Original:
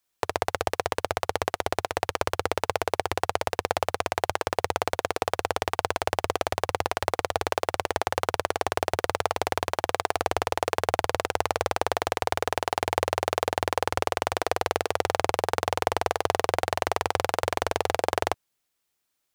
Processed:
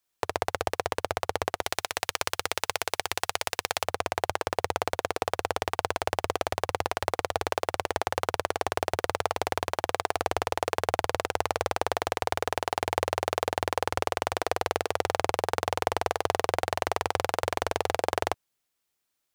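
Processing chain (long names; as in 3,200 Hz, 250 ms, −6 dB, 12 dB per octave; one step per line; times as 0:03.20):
0:01.62–0:03.84: tilt shelving filter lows −8 dB, about 1,300 Hz
level −2 dB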